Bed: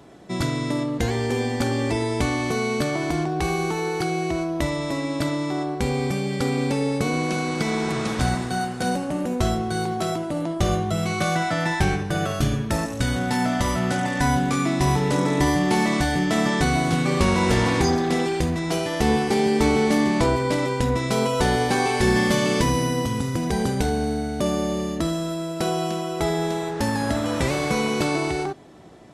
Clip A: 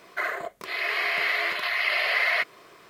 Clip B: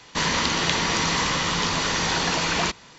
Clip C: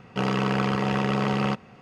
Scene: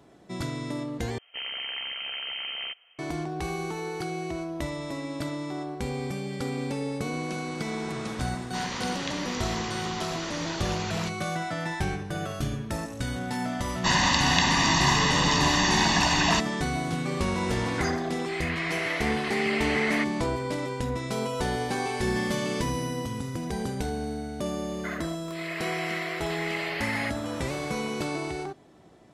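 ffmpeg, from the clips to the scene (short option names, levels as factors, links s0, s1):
-filter_complex "[2:a]asplit=2[s0][s1];[1:a]asplit=2[s2][s3];[0:a]volume=0.398[s4];[3:a]lowpass=f=2800:t=q:w=0.5098,lowpass=f=2800:t=q:w=0.6013,lowpass=f=2800:t=q:w=0.9,lowpass=f=2800:t=q:w=2.563,afreqshift=-3300[s5];[s1]aecho=1:1:1.1:0.82[s6];[s2]lowpass=4800[s7];[s4]asplit=2[s8][s9];[s8]atrim=end=1.184[s10];[s5]atrim=end=1.81,asetpts=PTS-STARTPTS,volume=0.299[s11];[s9]atrim=start=2.986[s12];[s0]atrim=end=2.98,asetpts=PTS-STARTPTS,volume=0.266,afade=t=in:d=0.004:c=hsin,afade=t=out:st=2.976:d=0.004:c=hsin,adelay=8380[s13];[s6]atrim=end=2.98,asetpts=PTS-STARTPTS,volume=0.75,afade=t=in:d=0.004:c=hsin,afade=t=out:st=2.976:d=0.004:c=hsin,adelay=13690[s14];[s7]atrim=end=2.89,asetpts=PTS-STARTPTS,volume=0.531,afade=t=in:d=0.004:c=hsin,afade=t=out:st=2.886:d=0.004:c=hsin,adelay=17610[s15];[s3]atrim=end=2.89,asetpts=PTS-STARTPTS,volume=0.376,afade=t=in:d=0.004:c=hsin,afade=t=out:st=2.886:d=0.004:c=hsin,adelay=24670[s16];[s10][s11]acrossfade=d=0.004:c1=hsin:c2=hsin[s17];[s17][s12]acrossfade=d=0.004:c1=hsin:c2=hsin[s18];[s18][s13][s14][s15][s16]amix=inputs=5:normalize=0"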